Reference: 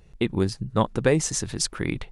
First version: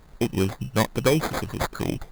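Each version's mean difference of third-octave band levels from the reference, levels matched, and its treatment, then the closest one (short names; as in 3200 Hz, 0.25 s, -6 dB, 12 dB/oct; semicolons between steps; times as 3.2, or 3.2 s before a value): 9.0 dB: added noise pink -57 dBFS; sample-rate reducer 2800 Hz, jitter 0%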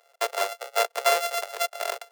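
21.0 dB: sample sorter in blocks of 64 samples; steep high-pass 430 Hz 72 dB/oct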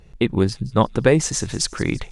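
1.0 dB: high shelf 10000 Hz -8 dB; on a send: thin delay 0.169 s, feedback 51%, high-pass 3600 Hz, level -17 dB; on the sum: gain +5 dB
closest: third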